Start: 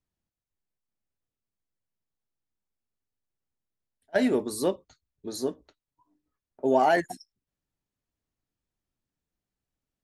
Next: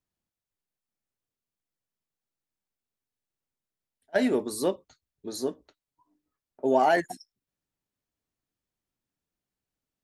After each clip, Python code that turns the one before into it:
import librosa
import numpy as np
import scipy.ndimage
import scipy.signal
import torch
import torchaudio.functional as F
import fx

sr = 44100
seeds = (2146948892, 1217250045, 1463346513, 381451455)

y = fx.low_shelf(x, sr, hz=95.0, db=-7.5)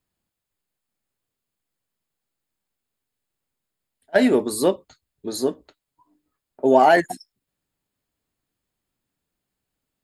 y = fx.notch(x, sr, hz=5800.0, q=5.8)
y = y * 10.0 ** (7.5 / 20.0)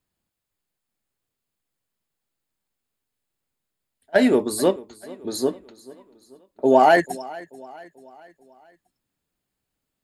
y = fx.echo_feedback(x, sr, ms=438, feedback_pct=49, wet_db=-20.5)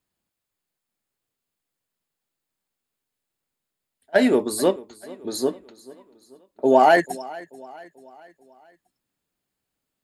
y = fx.low_shelf(x, sr, hz=110.0, db=-7.0)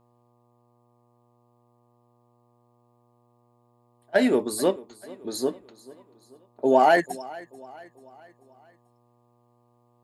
y = fx.dmg_buzz(x, sr, base_hz=120.0, harmonics=10, level_db=-61.0, tilt_db=-3, odd_only=False)
y = y * 10.0 ** (-3.0 / 20.0)